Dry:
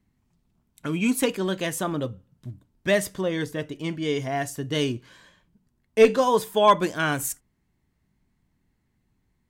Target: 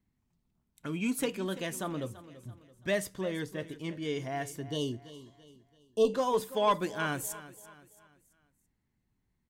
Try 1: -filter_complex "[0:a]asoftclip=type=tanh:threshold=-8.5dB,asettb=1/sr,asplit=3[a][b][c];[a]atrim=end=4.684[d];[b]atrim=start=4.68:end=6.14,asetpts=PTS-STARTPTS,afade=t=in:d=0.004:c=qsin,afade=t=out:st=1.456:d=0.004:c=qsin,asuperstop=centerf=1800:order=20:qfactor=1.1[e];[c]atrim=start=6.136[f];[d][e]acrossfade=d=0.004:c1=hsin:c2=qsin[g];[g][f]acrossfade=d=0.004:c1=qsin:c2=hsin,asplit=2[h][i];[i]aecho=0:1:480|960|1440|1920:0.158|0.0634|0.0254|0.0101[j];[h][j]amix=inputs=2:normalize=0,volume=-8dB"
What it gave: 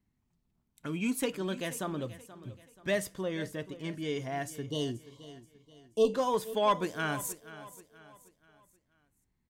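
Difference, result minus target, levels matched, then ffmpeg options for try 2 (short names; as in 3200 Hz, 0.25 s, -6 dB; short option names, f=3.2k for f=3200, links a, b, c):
echo 0.145 s late
-filter_complex "[0:a]asoftclip=type=tanh:threshold=-8.5dB,asettb=1/sr,asplit=3[a][b][c];[a]atrim=end=4.684[d];[b]atrim=start=4.68:end=6.14,asetpts=PTS-STARTPTS,afade=t=in:d=0.004:c=qsin,afade=t=out:st=1.456:d=0.004:c=qsin,asuperstop=centerf=1800:order=20:qfactor=1.1[e];[c]atrim=start=6.136[f];[d][e]acrossfade=d=0.004:c1=hsin:c2=qsin[g];[g][f]acrossfade=d=0.004:c1=qsin:c2=hsin,asplit=2[h][i];[i]aecho=0:1:335|670|1005|1340:0.158|0.0634|0.0254|0.0101[j];[h][j]amix=inputs=2:normalize=0,volume=-8dB"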